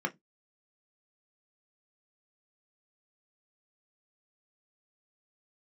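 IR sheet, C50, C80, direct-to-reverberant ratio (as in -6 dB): 25.0 dB, 36.0 dB, 3.0 dB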